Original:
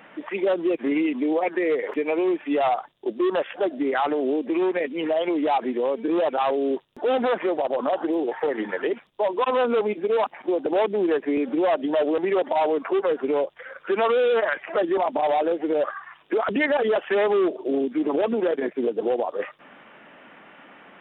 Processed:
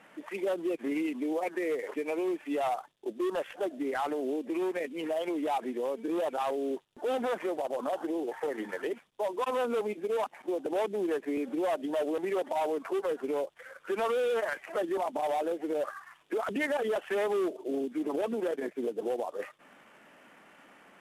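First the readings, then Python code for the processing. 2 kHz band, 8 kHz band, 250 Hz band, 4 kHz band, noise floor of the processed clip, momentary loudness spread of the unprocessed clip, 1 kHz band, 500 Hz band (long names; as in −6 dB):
−8.5 dB, can't be measured, −8.5 dB, −8.5 dB, −59 dBFS, 5 LU, −8.5 dB, −8.5 dB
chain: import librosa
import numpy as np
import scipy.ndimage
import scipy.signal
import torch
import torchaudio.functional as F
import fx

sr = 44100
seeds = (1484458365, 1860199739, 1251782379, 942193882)

y = fx.cvsd(x, sr, bps=64000)
y = y * librosa.db_to_amplitude(-8.5)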